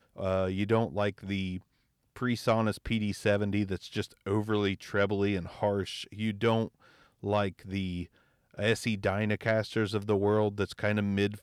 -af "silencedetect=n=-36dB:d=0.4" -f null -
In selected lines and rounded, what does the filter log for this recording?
silence_start: 1.58
silence_end: 2.16 | silence_duration: 0.59
silence_start: 6.67
silence_end: 7.23 | silence_duration: 0.56
silence_start: 8.03
silence_end: 8.59 | silence_duration: 0.56